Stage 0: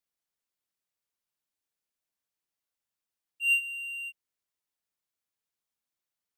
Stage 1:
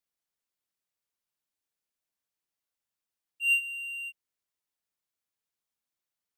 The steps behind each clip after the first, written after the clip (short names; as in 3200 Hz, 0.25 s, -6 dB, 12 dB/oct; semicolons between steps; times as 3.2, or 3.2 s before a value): nothing audible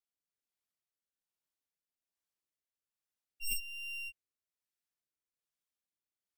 tracing distortion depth 0.22 ms; rotary speaker horn 1.2 Hz; gain -4 dB